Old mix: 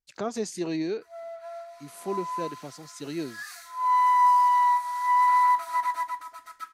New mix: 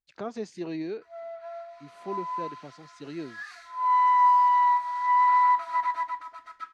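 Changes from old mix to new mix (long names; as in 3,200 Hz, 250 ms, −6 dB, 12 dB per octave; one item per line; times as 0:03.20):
speech −4.0 dB
master: add low-pass filter 3,700 Hz 12 dB per octave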